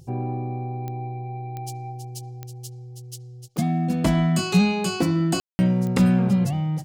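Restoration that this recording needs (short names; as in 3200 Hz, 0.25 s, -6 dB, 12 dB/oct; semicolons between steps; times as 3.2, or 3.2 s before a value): de-click; room tone fill 5.4–5.59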